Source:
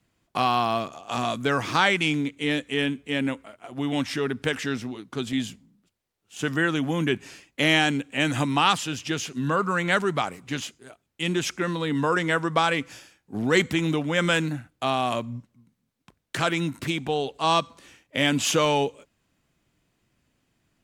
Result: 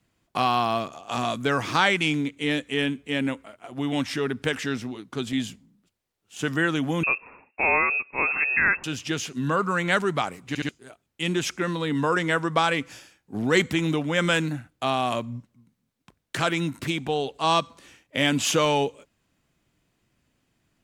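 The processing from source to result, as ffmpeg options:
-filter_complex "[0:a]asettb=1/sr,asplit=3[s0][s1][s2];[s0]atrim=end=7.034[s3];[s1]atrim=start=7.03:end=8.84,asetpts=PTS-STARTPTS,afade=t=in:d=0.004:c=qsin,afade=t=out:st=1.806:d=0.004:c=qsin,lowpass=f=2400:t=q:w=0.5098,lowpass=f=2400:t=q:w=0.6013,lowpass=f=2400:t=q:w=0.9,lowpass=f=2400:t=q:w=2.563,afreqshift=-2800[s4];[s2]atrim=start=8.836[s5];[s3][s4]acrossfade=d=0.004:c1=hsin:c2=qsin[s6];[s6][s5]acrossfade=d=0.004:c1=qsin:c2=hsin,asplit=4[s7][s8][s9][s10];[s7]atrim=end=10.552[s11];[s8]atrim=start=10.478:end=10.552[s12];[s9]atrim=start=10.478:end=10.552[s13];[s10]atrim=start=10.688[s14];[s11][s12]acrossfade=d=0.004:c1=hsin:c2=hsin[s15];[s15][s13]acrossfade=d=0.004:c1=hsin:c2=hsin[s16];[s16][s14]acrossfade=d=0.004:c1=hsin:c2=hsin"

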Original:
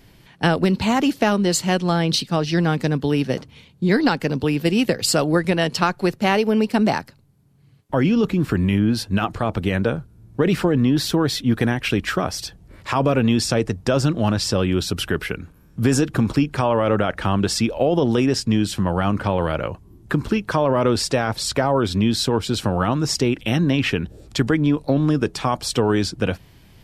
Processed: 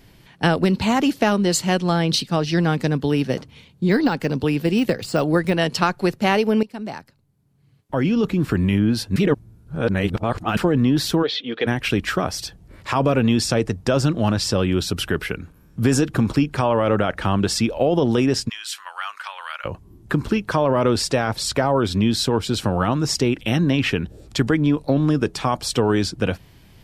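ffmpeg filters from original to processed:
-filter_complex "[0:a]asettb=1/sr,asplit=3[s0][s1][s2];[s0]atrim=end=3.054[s3];[s1]atrim=start=3.05:end=5.58,asetpts=PTS-STARTPTS,afade=t=in:d=0.004:c=qsin,afade=t=out:st=2.526:d=0.004:c=qsin,deesser=0.7[s4];[s2]atrim=start=5.576[s5];[s3][s4]acrossfade=d=0.004:c1=hsin:c2=qsin[s6];[s6][s5]acrossfade=d=0.004:c1=qsin:c2=hsin,asplit=3[s7][s8][s9];[s7]afade=t=out:st=11.22:d=0.02[s10];[s8]highpass=450,equalizer=f=470:t=q:w=4:g=8,equalizer=f=710:t=q:w=4:g=-4,equalizer=f=1000:t=q:w=4:g=-7,equalizer=f=1500:t=q:w=4:g=-4,equalizer=f=2300:t=q:w=4:g=3,equalizer=f=3300:t=q:w=4:g=8,lowpass=f=4100:w=0.5412,lowpass=f=4100:w=1.3066,afade=t=in:st=11.22:d=0.02,afade=t=out:st=11.66:d=0.02[s11];[s9]afade=t=in:st=11.66:d=0.02[s12];[s10][s11][s12]amix=inputs=3:normalize=0,asplit=3[s13][s14][s15];[s13]afade=t=out:st=18.48:d=0.02[s16];[s14]highpass=f=1200:w=0.5412,highpass=f=1200:w=1.3066,afade=t=in:st=18.48:d=0.02,afade=t=out:st=19.64:d=0.02[s17];[s15]afade=t=in:st=19.64:d=0.02[s18];[s16][s17][s18]amix=inputs=3:normalize=0,asplit=4[s19][s20][s21][s22];[s19]atrim=end=6.63,asetpts=PTS-STARTPTS,afade=t=out:st=6.626:d=0.004:c=hsin:silence=0.133352[s23];[s20]atrim=start=6.63:end=9.162,asetpts=PTS-STARTPTS,afade=t=in:d=1.85:silence=0.133352[s24];[s21]atrim=start=9.158:end=10.572,asetpts=PTS-STARTPTS,areverse[s25];[s22]atrim=start=10.568[s26];[s23][s24]concat=n=2:v=0:a=1[s27];[s27][s25]acrossfade=d=0.004:c1=hsin:c2=hsin[s28];[s28][s26]acrossfade=d=0.004:c1=hsin:c2=hsin"

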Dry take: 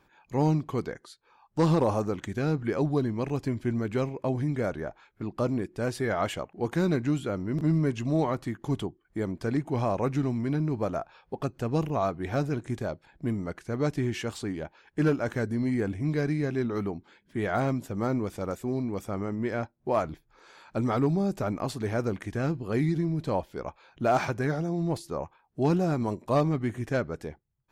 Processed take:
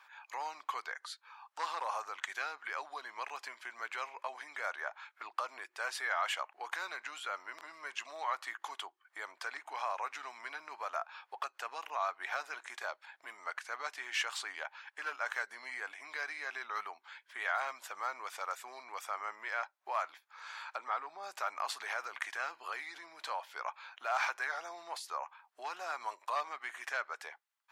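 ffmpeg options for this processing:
-filter_complex "[0:a]asplit=3[s0][s1][s2];[s0]afade=t=out:st=20.76:d=0.02[s3];[s1]lowpass=f=1700:p=1,afade=t=in:st=20.76:d=0.02,afade=t=out:st=21.22:d=0.02[s4];[s2]afade=t=in:st=21.22:d=0.02[s5];[s3][s4][s5]amix=inputs=3:normalize=0,asettb=1/sr,asplit=3[s6][s7][s8];[s6]atrim=end=21.724[s9];[s7]atrim=start=21.72:end=24.1,asetpts=PTS-STARTPTS,afade=t=in:d=0.004:c=qsin,afade=t=out:st=2.376:d=0.004:c=qsin,acompressor=threshold=0.0355:ratio=6:attack=3.2:release=140:knee=1:detection=peak[s10];[s8]atrim=start=24.096[s11];[s9][s10]acrossfade=d=0.004:c1=hsin:c2=qsin[s12];[s12][s11]acrossfade=d=0.004:c1=qsin:c2=hsin,alimiter=level_in=1.33:limit=0.0631:level=0:latency=1:release=289,volume=0.75,highpass=f=960:w=0.5412,highpass=f=960:w=1.3066,highshelf=f=5000:g=-9,volume=2.99"

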